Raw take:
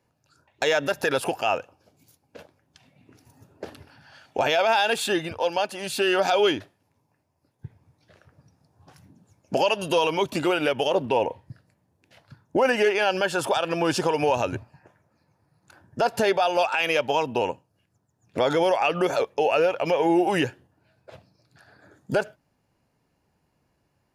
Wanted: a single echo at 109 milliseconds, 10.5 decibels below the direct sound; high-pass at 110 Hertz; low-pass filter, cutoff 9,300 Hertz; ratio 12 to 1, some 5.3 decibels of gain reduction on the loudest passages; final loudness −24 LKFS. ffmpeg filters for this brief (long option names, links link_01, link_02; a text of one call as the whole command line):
ffmpeg -i in.wav -af "highpass=110,lowpass=9300,acompressor=threshold=-22dB:ratio=12,aecho=1:1:109:0.299,volume=3.5dB" out.wav